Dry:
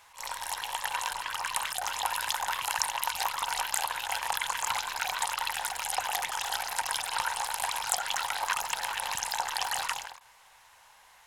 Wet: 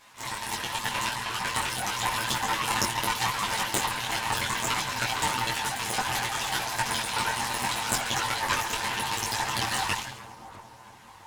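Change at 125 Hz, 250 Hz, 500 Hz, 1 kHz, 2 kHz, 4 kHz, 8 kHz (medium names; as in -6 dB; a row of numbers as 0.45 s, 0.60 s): +20.5 dB, no reading, +7.0 dB, +2.5 dB, +4.0 dB, +4.0 dB, +2.0 dB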